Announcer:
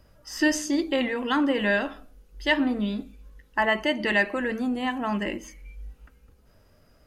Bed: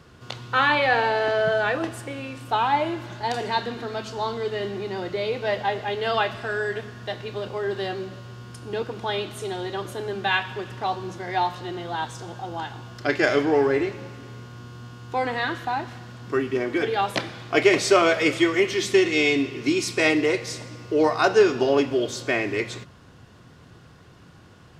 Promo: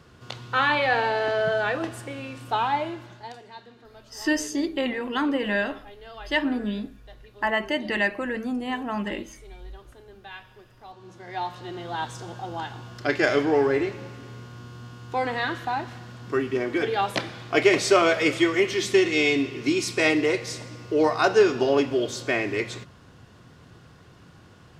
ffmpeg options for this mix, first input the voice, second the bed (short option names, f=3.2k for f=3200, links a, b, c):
-filter_complex "[0:a]adelay=3850,volume=-1.5dB[a];[1:a]volume=16dB,afade=t=out:st=2.61:d=0.8:silence=0.141254,afade=t=in:st=10.9:d=1.17:silence=0.125893[b];[a][b]amix=inputs=2:normalize=0"